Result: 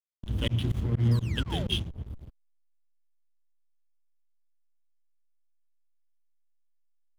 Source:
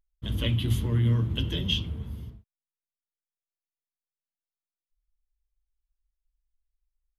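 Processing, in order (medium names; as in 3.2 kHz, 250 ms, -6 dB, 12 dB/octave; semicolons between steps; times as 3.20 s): painted sound fall, 1.11–1.76 s, 320–5300 Hz -38 dBFS; volume shaper 126 bpm, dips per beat 2, -24 dB, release 91 ms; hysteresis with a dead band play -31.5 dBFS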